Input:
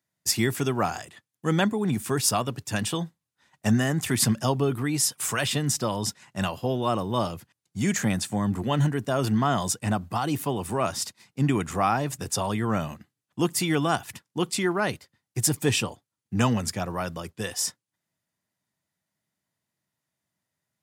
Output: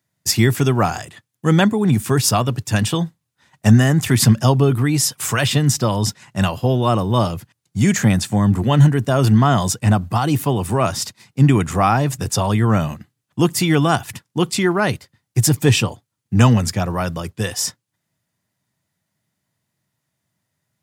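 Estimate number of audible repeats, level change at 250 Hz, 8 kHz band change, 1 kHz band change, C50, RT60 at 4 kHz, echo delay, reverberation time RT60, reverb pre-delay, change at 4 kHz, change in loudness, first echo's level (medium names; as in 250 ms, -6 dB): no echo, +9.0 dB, +5.0 dB, +7.0 dB, no reverb, no reverb, no echo, no reverb, no reverb, +7.0 dB, +9.0 dB, no echo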